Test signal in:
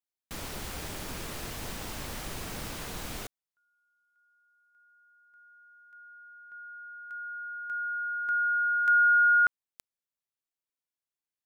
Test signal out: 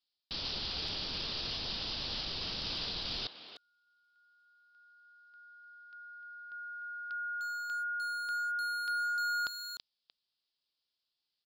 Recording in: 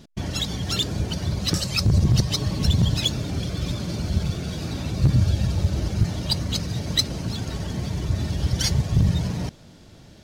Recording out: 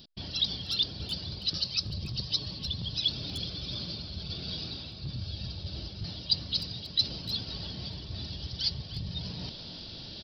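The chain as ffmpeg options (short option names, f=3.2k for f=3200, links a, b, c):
-filter_complex "[0:a]areverse,acompressor=threshold=-36dB:ratio=4:attack=0.3:release=900:knee=1:detection=peak,areverse,aresample=11025,aresample=44100,asplit=2[a][b];[b]adelay=300,highpass=300,lowpass=3.4k,asoftclip=type=hard:threshold=-38dB,volume=-9dB[c];[a][c]amix=inputs=2:normalize=0,aexciter=amount=6.6:drive=5.8:freq=3k"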